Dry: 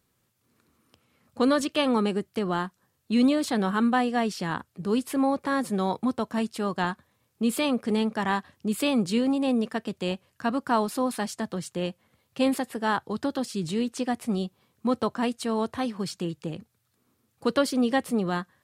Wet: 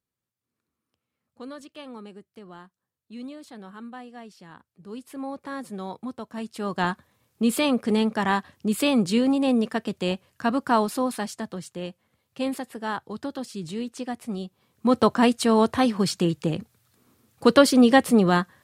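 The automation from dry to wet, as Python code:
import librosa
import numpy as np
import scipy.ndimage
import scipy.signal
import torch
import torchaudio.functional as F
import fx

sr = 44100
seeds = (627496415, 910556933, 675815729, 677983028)

y = fx.gain(x, sr, db=fx.line((4.54, -17.0), (5.42, -8.0), (6.31, -8.0), (6.86, 3.0), (10.77, 3.0), (11.77, -4.0), (14.46, -4.0), (15.05, 8.0)))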